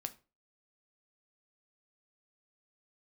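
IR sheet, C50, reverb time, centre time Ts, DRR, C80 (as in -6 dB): 18.0 dB, 0.35 s, 4 ms, 8.0 dB, 23.5 dB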